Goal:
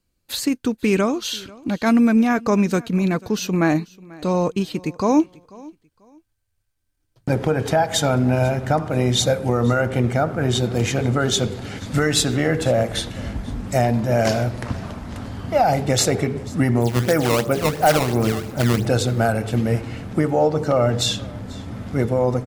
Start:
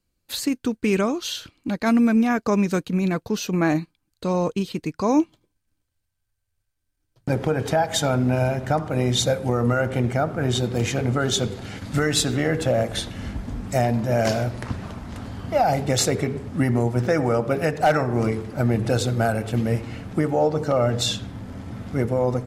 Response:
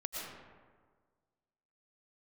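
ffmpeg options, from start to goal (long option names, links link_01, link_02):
-filter_complex "[0:a]asplit=3[link_01][link_02][link_03];[link_01]afade=type=out:start_time=16.8:duration=0.02[link_04];[link_02]acrusher=samples=16:mix=1:aa=0.000001:lfo=1:lforange=25.6:lforate=2.9,afade=type=in:start_time=16.8:duration=0.02,afade=type=out:start_time=18.85:duration=0.02[link_05];[link_03]afade=type=in:start_time=18.85:duration=0.02[link_06];[link_04][link_05][link_06]amix=inputs=3:normalize=0,aecho=1:1:490|980:0.075|0.0195,volume=2.5dB"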